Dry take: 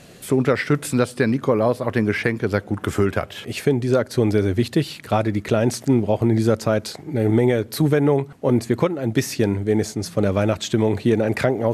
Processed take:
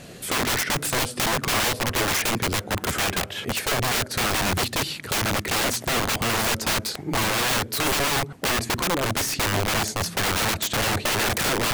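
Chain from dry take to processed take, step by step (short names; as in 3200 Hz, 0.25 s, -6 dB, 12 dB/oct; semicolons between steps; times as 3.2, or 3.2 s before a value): wrapped overs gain 21 dB; gain +3 dB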